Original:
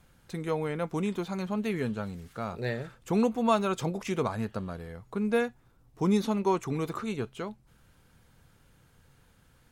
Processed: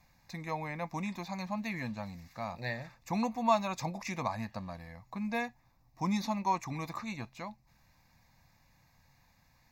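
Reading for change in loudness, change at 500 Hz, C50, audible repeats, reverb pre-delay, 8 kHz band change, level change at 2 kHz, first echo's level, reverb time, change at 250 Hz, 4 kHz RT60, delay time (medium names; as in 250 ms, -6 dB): -5.0 dB, -9.0 dB, no reverb, no echo, no reverb, -2.5 dB, -1.5 dB, no echo, no reverb, -6.5 dB, no reverb, no echo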